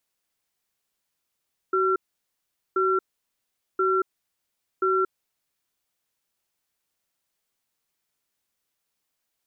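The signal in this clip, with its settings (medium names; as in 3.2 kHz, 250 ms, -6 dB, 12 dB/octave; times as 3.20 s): cadence 377 Hz, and 1.36 kHz, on 0.23 s, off 0.80 s, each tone -22 dBFS 3.99 s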